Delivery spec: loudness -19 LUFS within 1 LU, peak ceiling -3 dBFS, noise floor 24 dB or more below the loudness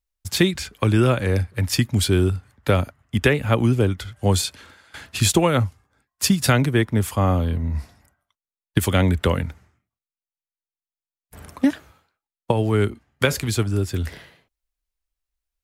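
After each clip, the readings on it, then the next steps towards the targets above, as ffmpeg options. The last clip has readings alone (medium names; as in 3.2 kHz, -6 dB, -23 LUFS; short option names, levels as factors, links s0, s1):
loudness -21.5 LUFS; peak level -3.5 dBFS; loudness target -19.0 LUFS
-> -af "volume=1.33,alimiter=limit=0.708:level=0:latency=1"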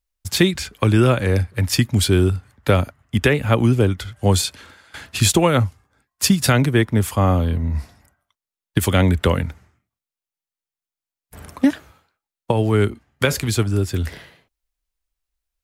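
loudness -19.0 LUFS; peak level -3.0 dBFS; noise floor -91 dBFS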